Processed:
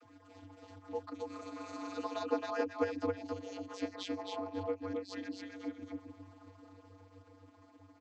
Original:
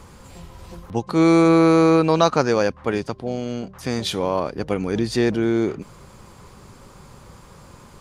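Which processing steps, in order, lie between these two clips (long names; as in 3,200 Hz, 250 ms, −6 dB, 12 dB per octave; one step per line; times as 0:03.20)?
harmonic-percussive split with one part muted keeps percussive
source passing by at 0:03.01, 8 m/s, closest 2.2 metres
downward compressor 3 to 1, threshold −55 dBFS, peak gain reduction 24 dB
transient designer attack −3 dB, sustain −7 dB
repeating echo 270 ms, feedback 17%, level −3 dB
channel vocoder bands 32, square 95.5 Hz
level +17.5 dB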